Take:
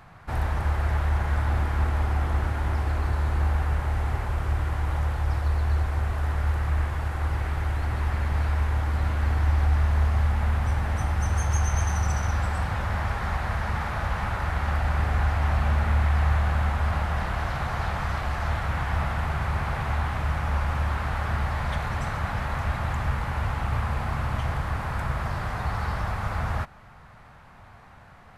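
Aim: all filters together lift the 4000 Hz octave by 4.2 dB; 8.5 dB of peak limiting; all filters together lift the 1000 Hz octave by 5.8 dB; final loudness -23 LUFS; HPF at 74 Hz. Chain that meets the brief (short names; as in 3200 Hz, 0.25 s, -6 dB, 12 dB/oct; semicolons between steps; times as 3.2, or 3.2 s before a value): HPF 74 Hz; bell 1000 Hz +7 dB; bell 4000 Hz +5 dB; gain +7 dB; limiter -14 dBFS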